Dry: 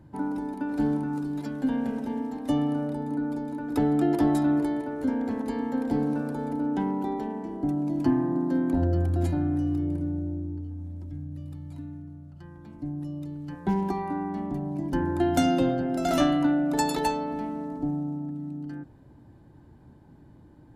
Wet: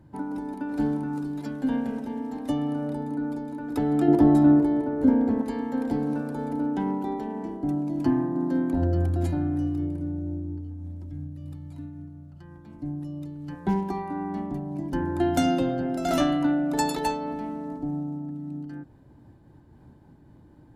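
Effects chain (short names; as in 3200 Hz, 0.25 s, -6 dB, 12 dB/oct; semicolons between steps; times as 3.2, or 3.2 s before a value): 4.08–5.43 tilt shelf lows +6.5 dB, about 1200 Hz; noise-modulated level, depth 50%; gain +2 dB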